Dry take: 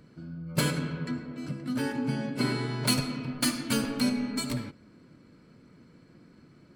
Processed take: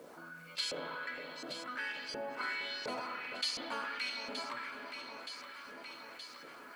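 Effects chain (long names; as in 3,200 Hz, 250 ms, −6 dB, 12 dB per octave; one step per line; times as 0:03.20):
meter weighting curve A
auto-filter band-pass saw up 1.4 Hz 490–5,900 Hz
log-companded quantiser 8 bits
delay that swaps between a low-pass and a high-pass 461 ms, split 1,100 Hz, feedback 70%, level −12.5 dB
on a send at −12 dB: convolution reverb RT60 3.0 s, pre-delay 30 ms
on the sum: envelope flattener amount 50%
level −2.5 dB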